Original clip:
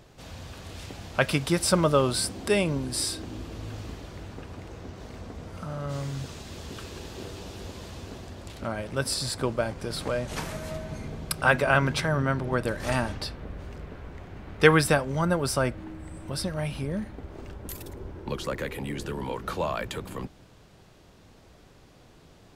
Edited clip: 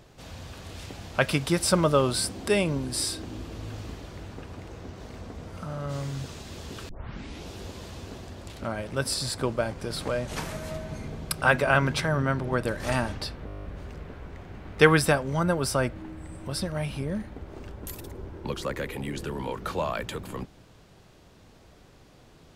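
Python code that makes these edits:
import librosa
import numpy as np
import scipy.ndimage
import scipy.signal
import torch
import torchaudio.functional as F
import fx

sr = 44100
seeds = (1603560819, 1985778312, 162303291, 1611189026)

y = fx.edit(x, sr, fx.tape_start(start_s=6.89, length_s=0.6),
    fx.stutter(start_s=13.46, slice_s=0.02, count=10), tone=tone)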